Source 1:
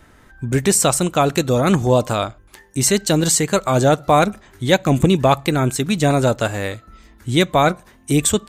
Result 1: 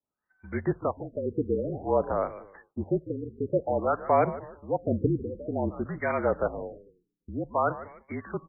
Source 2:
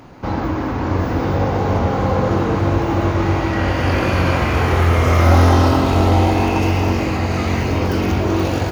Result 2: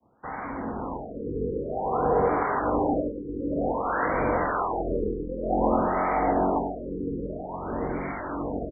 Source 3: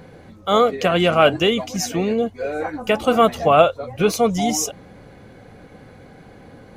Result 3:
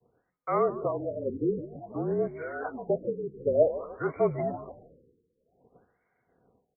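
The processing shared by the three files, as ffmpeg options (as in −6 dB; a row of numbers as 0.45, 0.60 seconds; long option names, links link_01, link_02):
-filter_complex "[0:a]asplit=2[link_01][link_02];[link_02]highpass=frequency=720:poles=1,volume=8dB,asoftclip=type=tanh:threshold=-1dB[link_03];[link_01][link_03]amix=inputs=2:normalize=0,lowpass=frequency=5500:poles=1,volume=-6dB,acrossover=split=360|1700|2000[link_04][link_05][link_06][link_07];[link_05]dynaudnorm=framelen=140:gausssize=21:maxgain=11.5dB[link_08];[link_04][link_08][link_06][link_07]amix=inputs=4:normalize=0,highpass=110,afreqshift=-41,acrossover=split=820[link_09][link_10];[link_09]aeval=exprs='val(0)*(1-0.7/2+0.7/2*cos(2*PI*1.4*n/s))':channel_layout=same[link_11];[link_10]aeval=exprs='val(0)*(1-0.7/2-0.7/2*cos(2*PI*1.4*n/s))':channel_layout=same[link_12];[link_11][link_12]amix=inputs=2:normalize=0,asplit=4[link_13][link_14][link_15][link_16];[link_14]adelay=149,afreqshift=-42,volume=-15dB[link_17];[link_15]adelay=298,afreqshift=-84,volume=-23.9dB[link_18];[link_16]adelay=447,afreqshift=-126,volume=-32.7dB[link_19];[link_13][link_17][link_18][link_19]amix=inputs=4:normalize=0,agate=range=-33dB:threshold=-36dB:ratio=3:detection=peak,afftfilt=real='re*lt(b*sr/1024,490*pow(2400/490,0.5+0.5*sin(2*PI*0.53*pts/sr)))':imag='im*lt(b*sr/1024,490*pow(2400/490,0.5+0.5*sin(2*PI*0.53*pts/sr)))':win_size=1024:overlap=0.75,volume=-8dB"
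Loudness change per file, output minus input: −12.5, −10.5, −11.5 LU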